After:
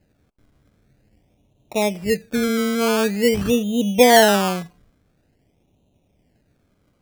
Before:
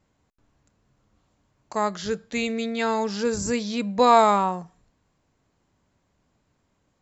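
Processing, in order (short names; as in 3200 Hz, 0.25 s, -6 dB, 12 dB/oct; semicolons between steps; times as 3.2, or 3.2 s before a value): inverse Chebyshev band-stop 1500–4900 Hz, stop band 50 dB; decimation with a swept rate 19×, swing 60% 0.47 Hz; gain +7.5 dB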